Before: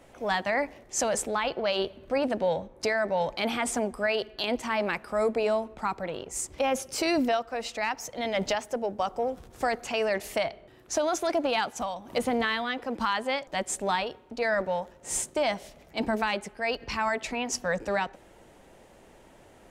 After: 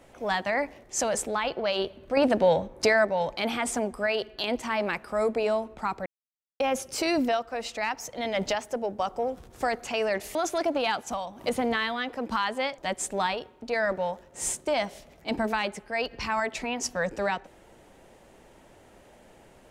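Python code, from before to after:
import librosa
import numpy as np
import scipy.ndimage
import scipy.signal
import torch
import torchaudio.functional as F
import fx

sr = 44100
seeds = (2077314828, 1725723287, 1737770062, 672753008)

y = fx.edit(x, sr, fx.clip_gain(start_s=2.17, length_s=0.88, db=5.5),
    fx.silence(start_s=6.06, length_s=0.54),
    fx.cut(start_s=10.35, length_s=0.69), tone=tone)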